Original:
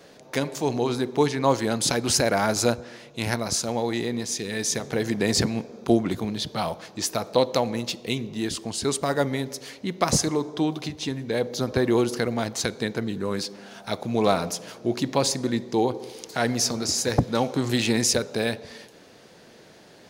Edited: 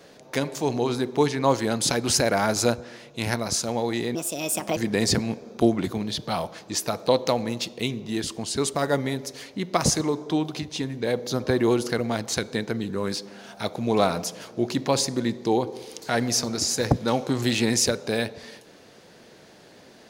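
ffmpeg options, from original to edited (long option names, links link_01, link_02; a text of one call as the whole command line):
ffmpeg -i in.wav -filter_complex "[0:a]asplit=3[link_01][link_02][link_03];[link_01]atrim=end=4.154[link_04];[link_02]atrim=start=4.15:end=5.04,asetpts=PTS-STARTPTS,asetrate=63504,aresample=44100,atrim=end_sample=27256,asetpts=PTS-STARTPTS[link_05];[link_03]atrim=start=5.036[link_06];[link_04][link_05]acrossfade=duration=0.004:curve1=hsin:curve2=hsin[link_07];[link_07][link_06]acrossfade=duration=0.004:curve1=hsin:curve2=hsin" out.wav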